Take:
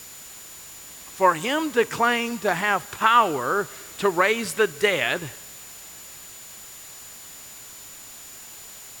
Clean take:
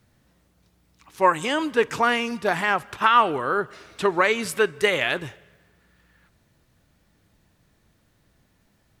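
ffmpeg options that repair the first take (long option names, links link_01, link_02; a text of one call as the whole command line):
ffmpeg -i in.wav -af "bandreject=frequency=7000:width=30,afftdn=noise_reduction=22:noise_floor=-42" out.wav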